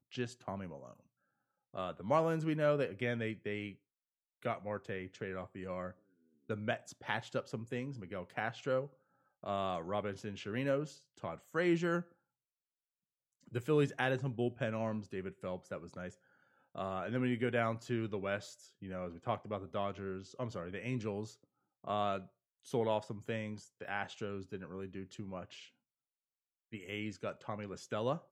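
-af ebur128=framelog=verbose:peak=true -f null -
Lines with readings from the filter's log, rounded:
Integrated loudness:
  I:         -38.6 LUFS
  Threshold: -49.0 LUFS
Loudness range:
  LRA:         6.9 LU
  Threshold: -59.4 LUFS
  LRA low:   -43.8 LUFS
  LRA high:  -36.8 LUFS
True peak:
  Peak:      -17.4 dBFS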